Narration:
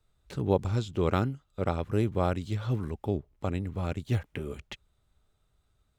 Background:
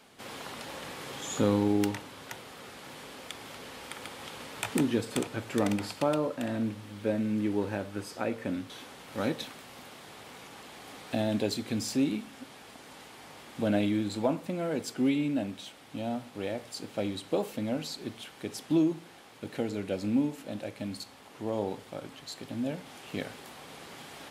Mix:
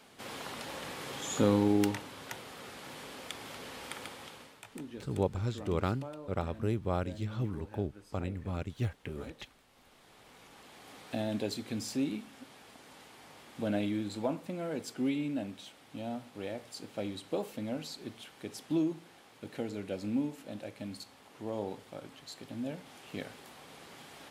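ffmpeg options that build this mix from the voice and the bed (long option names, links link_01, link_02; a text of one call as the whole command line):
ffmpeg -i stem1.wav -i stem2.wav -filter_complex "[0:a]adelay=4700,volume=-5dB[link_01];[1:a]volume=11.5dB,afade=type=out:start_time=3.94:duration=0.66:silence=0.149624,afade=type=in:start_time=9.7:duration=1.29:silence=0.251189[link_02];[link_01][link_02]amix=inputs=2:normalize=0" out.wav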